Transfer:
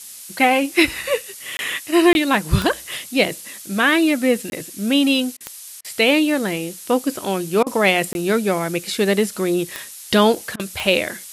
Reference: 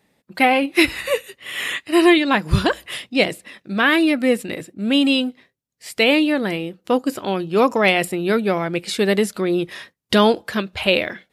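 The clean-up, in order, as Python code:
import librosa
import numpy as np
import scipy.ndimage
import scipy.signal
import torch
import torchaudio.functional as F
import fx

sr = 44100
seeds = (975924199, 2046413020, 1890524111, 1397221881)

y = fx.fix_declick_ar(x, sr, threshold=10.0)
y = fx.fix_interpolate(y, sr, at_s=(1.57, 2.13, 4.5, 8.13), length_ms=21.0)
y = fx.fix_interpolate(y, sr, at_s=(5.37, 5.81, 7.63, 10.56), length_ms=34.0)
y = fx.noise_reduce(y, sr, print_start_s=5.35, print_end_s=5.85, reduce_db=23.0)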